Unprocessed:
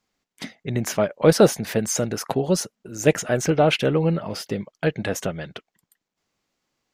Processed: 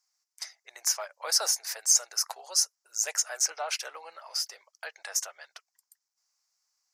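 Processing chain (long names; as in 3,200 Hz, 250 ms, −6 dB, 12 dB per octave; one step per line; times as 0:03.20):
inverse Chebyshev high-pass filter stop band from 240 Hz, stop band 60 dB
high shelf with overshoot 4,200 Hz +8 dB, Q 3
level −7.5 dB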